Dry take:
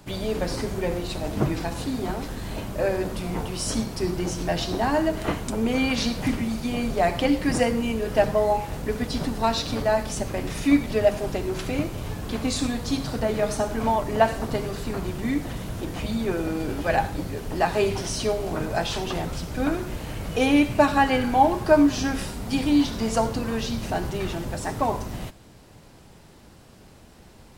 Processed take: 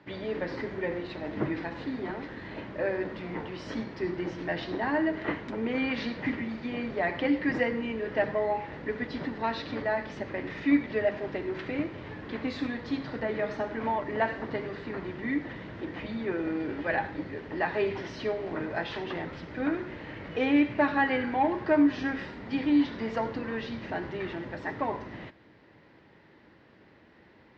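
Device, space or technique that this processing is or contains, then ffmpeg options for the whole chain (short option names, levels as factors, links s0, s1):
overdrive pedal into a guitar cabinet: -filter_complex "[0:a]asplit=2[s0][s1];[s1]highpass=f=720:p=1,volume=3.55,asoftclip=type=tanh:threshold=0.596[s2];[s0][s2]amix=inputs=2:normalize=0,lowpass=f=1100:p=1,volume=0.501,highpass=76,equalizer=f=310:t=q:w=4:g=5,equalizer=f=720:t=q:w=4:g=-6,equalizer=f=1200:t=q:w=4:g=-3,equalizer=f=1900:t=q:w=4:g=10,lowpass=f=4600:w=0.5412,lowpass=f=4600:w=1.3066,volume=0.473"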